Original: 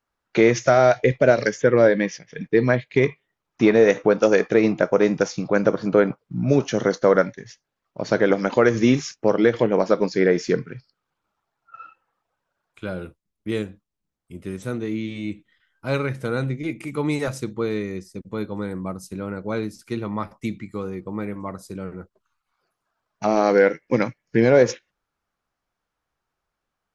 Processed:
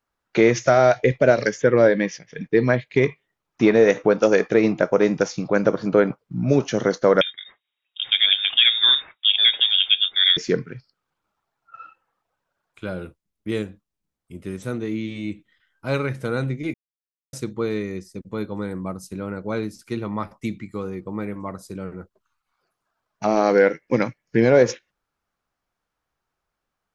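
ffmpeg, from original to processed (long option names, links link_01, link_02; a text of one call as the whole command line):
ffmpeg -i in.wav -filter_complex "[0:a]asettb=1/sr,asplit=3[link_01][link_02][link_03];[link_01]atrim=end=7.214[link_04];[link_02]atrim=start=7.21:end=10.37,asetpts=PTS-STARTPTS,afade=type=in:duration=0.004:curve=qsin,afade=type=out:start_time=3.156:duration=0.004:curve=qsin,lowpass=frequency=3200:width_type=q:width=0.5098,lowpass=frequency=3200:width_type=q:width=0.6013,lowpass=frequency=3200:width_type=q:width=0.9,lowpass=frequency=3200:width_type=q:width=2.563,afreqshift=-3800[link_05];[link_03]atrim=start=10.366[link_06];[link_04][link_05]acrossfade=duration=0.004:curve1=hsin:curve2=qsin[link_07];[link_07][link_06]acrossfade=duration=0.004:curve1=qsin:curve2=hsin,asplit=3[link_08][link_09][link_10];[link_08]atrim=end=16.74,asetpts=PTS-STARTPTS,afade=type=out:start_time=16.736:duration=0.004:curve=hsin[link_11];[link_09]atrim=start=16.74:end=17.33,asetpts=PTS-STARTPTS,volume=0[link_12];[link_10]atrim=start=17.33,asetpts=PTS-STARTPTS,afade=type=in:duration=0.004:curve=hsin[link_13];[link_11][link_12][link_13]concat=n=3:v=0:a=1" out.wav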